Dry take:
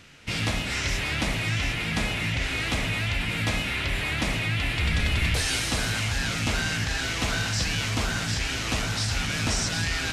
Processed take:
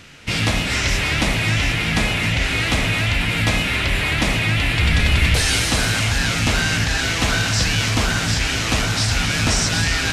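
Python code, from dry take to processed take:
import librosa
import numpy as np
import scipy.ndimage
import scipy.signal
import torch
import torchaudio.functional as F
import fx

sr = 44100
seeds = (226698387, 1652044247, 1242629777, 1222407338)

y = x + 10.0 ** (-11.5 / 20.0) * np.pad(x, (int(266 * sr / 1000.0), 0))[:len(x)]
y = F.gain(torch.from_numpy(y), 7.5).numpy()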